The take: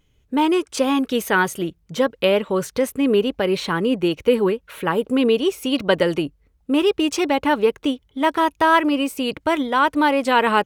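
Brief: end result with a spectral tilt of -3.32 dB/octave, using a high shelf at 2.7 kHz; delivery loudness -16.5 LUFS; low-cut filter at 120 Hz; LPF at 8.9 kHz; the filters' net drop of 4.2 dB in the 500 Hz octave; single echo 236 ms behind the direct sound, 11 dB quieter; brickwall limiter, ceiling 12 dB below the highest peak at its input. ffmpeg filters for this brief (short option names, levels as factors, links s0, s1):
-af "highpass=120,lowpass=8900,equalizer=f=500:t=o:g=-5.5,highshelf=f=2700:g=8,alimiter=limit=0.211:level=0:latency=1,aecho=1:1:236:0.282,volume=2.24"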